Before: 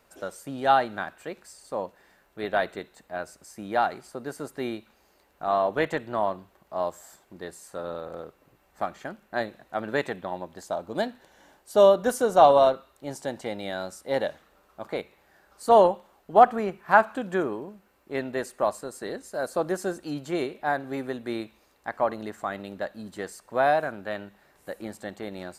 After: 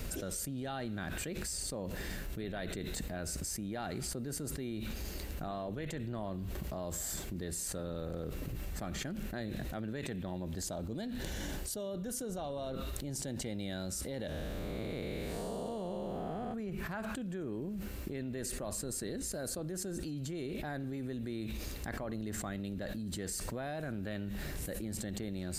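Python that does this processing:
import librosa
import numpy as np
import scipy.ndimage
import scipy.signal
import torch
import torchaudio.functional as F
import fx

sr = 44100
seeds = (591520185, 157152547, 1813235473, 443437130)

y = fx.spec_blur(x, sr, span_ms=372.0, at=(14.29, 16.54))
y = fx.tone_stack(y, sr, knobs='10-0-1')
y = fx.env_flatten(y, sr, amount_pct=100)
y = F.gain(torch.from_numpy(y), 1.5).numpy()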